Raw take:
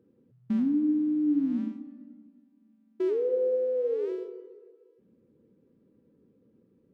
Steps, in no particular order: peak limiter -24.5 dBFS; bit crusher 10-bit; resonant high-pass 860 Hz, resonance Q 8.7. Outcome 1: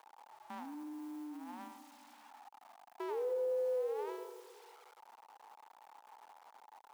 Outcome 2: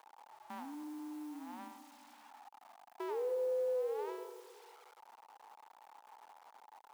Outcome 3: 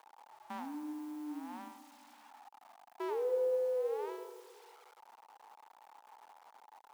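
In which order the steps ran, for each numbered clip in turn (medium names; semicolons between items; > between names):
bit crusher > peak limiter > resonant high-pass; peak limiter > bit crusher > resonant high-pass; bit crusher > resonant high-pass > peak limiter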